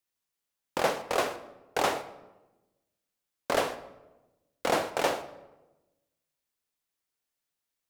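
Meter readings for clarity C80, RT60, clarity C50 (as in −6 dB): 15.5 dB, 1.1 s, 13.0 dB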